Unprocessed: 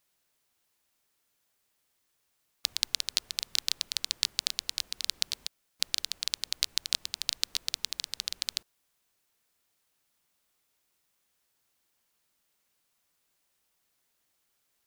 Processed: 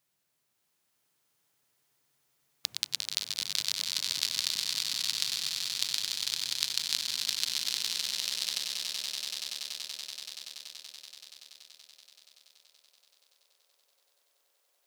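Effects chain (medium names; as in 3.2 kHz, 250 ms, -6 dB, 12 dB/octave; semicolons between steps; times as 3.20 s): high-pass sweep 130 Hz -> 520 Hz, 6.53–8.20 s; echo with a slow build-up 95 ms, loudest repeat 8, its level -8.5 dB; trim -3 dB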